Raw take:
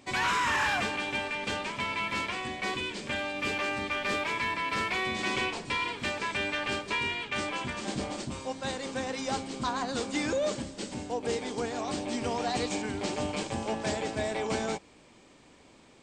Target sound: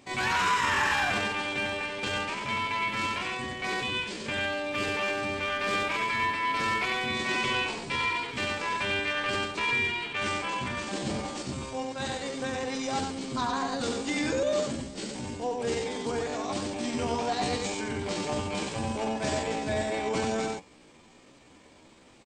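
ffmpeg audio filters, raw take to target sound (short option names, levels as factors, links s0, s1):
-af "aecho=1:1:22|68:0.335|0.668,atempo=0.72"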